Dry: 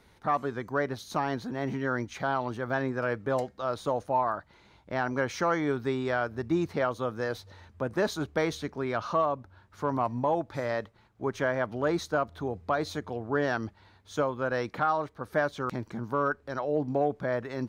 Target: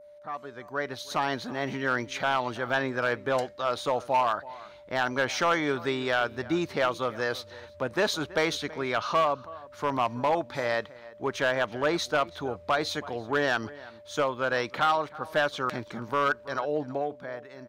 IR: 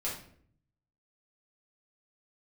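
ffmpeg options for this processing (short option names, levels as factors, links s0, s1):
-filter_complex "[0:a]dynaudnorm=f=100:g=17:m=5.01,lowshelf=f=350:g=-8,asplit=2[s0][s1];[s1]adelay=326.5,volume=0.112,highshelf=f=4000:g=-7.35[s2];[s0][s2]amix=inputs=2:normalize=0,asoftclip=type=hard:threshold=0.335,adynamicequalizer=threshold=0.0158:dfrequency=3200:dqfactor=0.91:tfrequency=3200:tqfactor=0.91:attack=5:release=100:ratio=0.375:range=3:mode=boostabove:tftype=bell,aeval=exprs='val(0)+0.0112*sin(2*PI*590*n/s)':c=same,volume=0.355"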